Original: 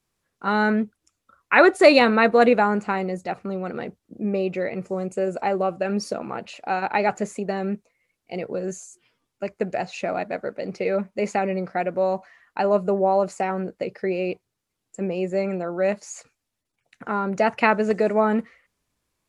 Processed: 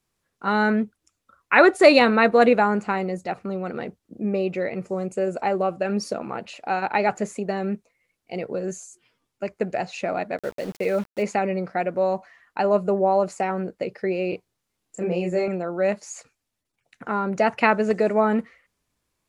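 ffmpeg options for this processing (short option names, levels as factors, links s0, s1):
-filter_complex "[0:a]asettb=1/sr,asplit=3[s0][s1][s2];[s0]atrim=end=10.384[s3];[s1]atrim=start=10.38:end=11.23,asetpts=PTS-STARTPTS,afade=t=in:d=0.004:c=qsin,afade=t=out:st=0.846:d=0.004:c=qsin,aeval=exprs='val(0)*gte(abs(val(0)),0.0141)':c=same[s4];[s2]atrim=start=11.226[s5];[s3][s4]acrossfade=d=0.004:c1=hsin:c2=qsin[s6];[s6][s5]acrossfade=d=0.004:c1=qsin:c2=hsin,asettb=1/sr,asplit=3[s7][s8][s9];[s7]atrim=end=14.304[s10];[s8]atrim=start=14.3:end=15.48,asetpts=PTS-STARTPTS,afade=t=in:d=0.004:c=qsin,afade=t=out:st=1.176:d=0.004:c=qsin,asplit=2[s11][s12];[s12]adelay=28,volume=0.794[s13];[s11][s13]amix=inputs=2:normalize=0,atrim=end_sample=52038[s14];[s9]atrim=start=15.476[s15];[s10][s14]acrossfade=d=0.004:c1=hsin:c2=qsin[s16];[s16][s15]acrossfade=d=0.004:c1=qsin:c2=hsin"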